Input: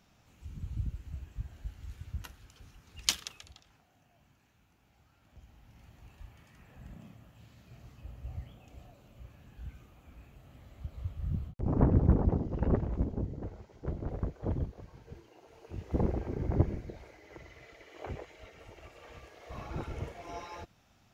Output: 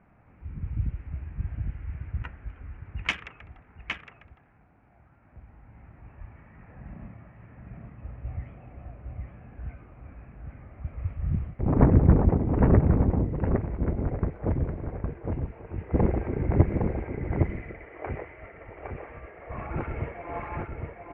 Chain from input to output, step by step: Wiener smoothing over 9 samples; resonant high shelf 3100 Hz -11 dB, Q 3; echo 0.811 s -4 dB; crackle 140/s -68 dBFS; low-pass opened by the level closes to 1500 Hz, open at -23.5 dBFS; gain +6.5 dB

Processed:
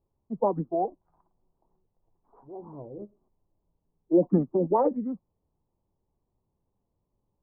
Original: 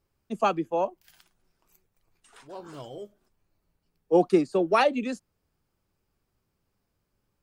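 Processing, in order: formant shift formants -4 st; elliptic low-pass 1000 Hz, stop band 80 dB

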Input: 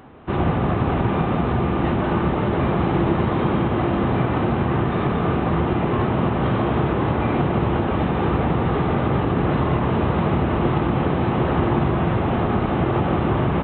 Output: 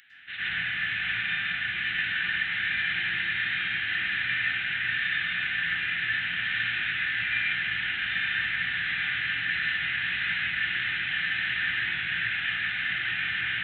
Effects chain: elliptic high-pass 1700 Hz, stop band 40 dB; reverb RT60 0.40 s, pre-delay 97 ms, DRR -7.5 dB; gain +2.5 dB

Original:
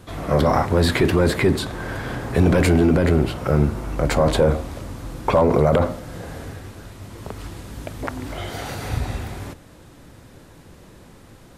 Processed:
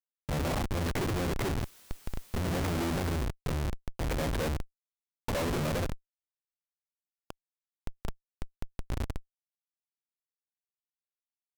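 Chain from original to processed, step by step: Schmitt trigger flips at -19 dBFS; 1.6–3.24 requantised 8-bit, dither triangular; gain -8.5 dB

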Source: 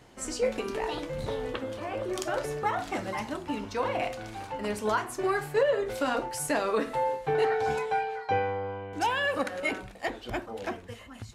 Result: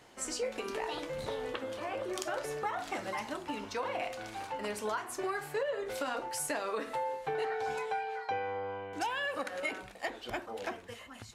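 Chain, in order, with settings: low shelf 260 Hz -11.5 dB; compressor 3:1, threshold -33 dBFS, peak gain reduction 8.5 dB

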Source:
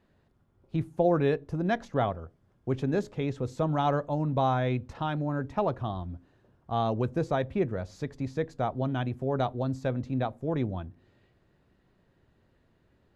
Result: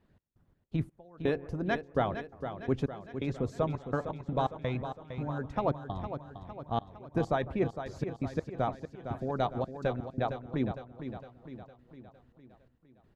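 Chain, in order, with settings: tone controls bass +5 dB, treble -2 dB; analogue delay 0.15 s, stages 2048, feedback 41%, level -17.5 dB; step gate "x.x.x..xxx." 84 bpm -24 dB; harmonic-percussive split harmonic -10 dB; on a send: feedback echo 0.458 s, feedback 53%, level -9.5 dB

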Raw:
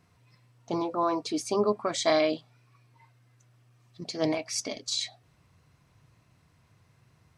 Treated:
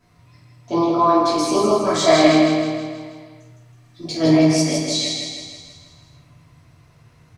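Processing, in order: 1.19–4.26 phaser 1.3 Hz, delay 4.7 ms, feedback 44%; feedback echo 0.16 s, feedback 54%, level -4.5 dB; reverb RT60 0.75 s, pre-delay 3 ms, DRR -9.5 dB; gain -1 dB

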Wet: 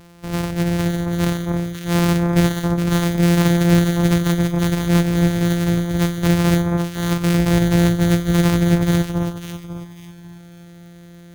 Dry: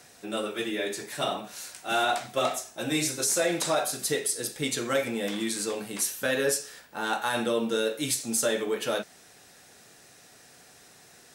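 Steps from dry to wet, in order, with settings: sample sorter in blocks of 256 samples; low shelf 200 Hz +8 dB; on a send: echo with dull and thin repeats by turns 0.273 s, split 1600 Hz, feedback 53%, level -2.5 dB; on the sum: gain +5 dB

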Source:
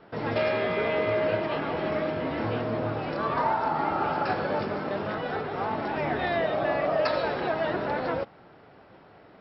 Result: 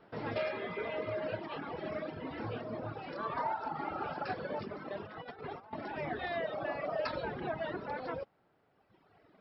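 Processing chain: reverb removal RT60 1.9 s; 5.06–5.73 negative-ratio compressor -38 dBFS, ratio -0.5; 7.06–7.61 tone controls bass +8 dB, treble -4 dB; gain -7.5 dB

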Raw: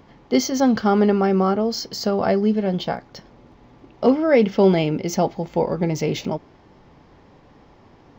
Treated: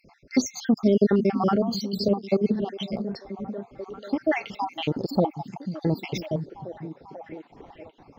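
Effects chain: random spectral dropouts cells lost 66%; delay with a stepping band-pass 0.491 s, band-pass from 160 Hz, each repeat 0.7 oct, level -6.5 dB; 2.08–2.62 three-band expander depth 100%

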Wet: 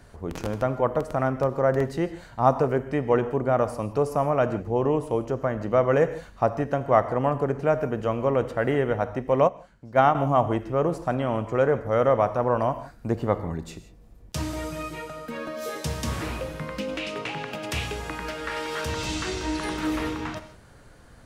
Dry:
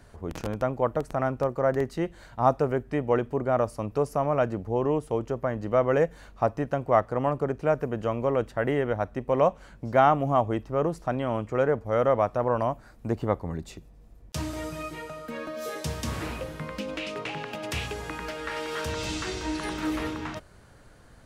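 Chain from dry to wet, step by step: non-linear reverb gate 0.19 s flat, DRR 11 dB; 9.47–10.15 upward expander 2.5:1, over -24 dBFS; gain +2 dB

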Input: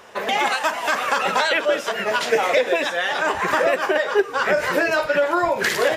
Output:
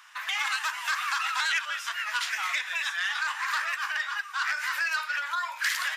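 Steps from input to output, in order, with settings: steep high-pass 1100 Hz 36 dB/oct; core saturation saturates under 3600 Hz; gain -4 dB

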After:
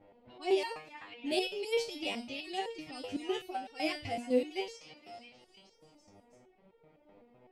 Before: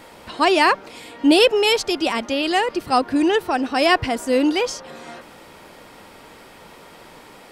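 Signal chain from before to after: low-pass opened by the level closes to 1100 Hz, open at -17 dBFS; band shelf 1300 Hz -10.5 dB 1.1 oct; on a send: delay with a stepping band-pass 0.325 s, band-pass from 1500 Hz, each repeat 0.7 oct, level -8.5 dB; on the sum: stepped resonator 7.9 Hz 100–460 Hz; gain -4 dB

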